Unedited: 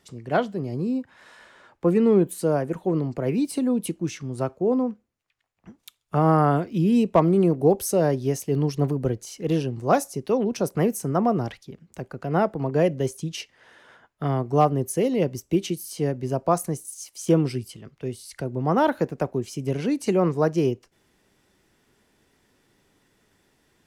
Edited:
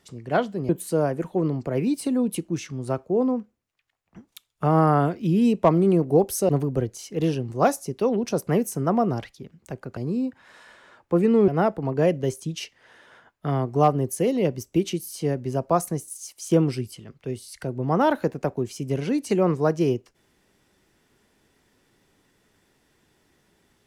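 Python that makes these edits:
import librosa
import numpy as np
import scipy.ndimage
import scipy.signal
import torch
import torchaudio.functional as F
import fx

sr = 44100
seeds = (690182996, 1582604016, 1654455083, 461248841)

y = fx.edit(x, sr, fx.move(start_s=0.69, length_s=1.51, to_s=12.25),
    fx.cut(start_s=8.0, length_s=0.77), tone=tone)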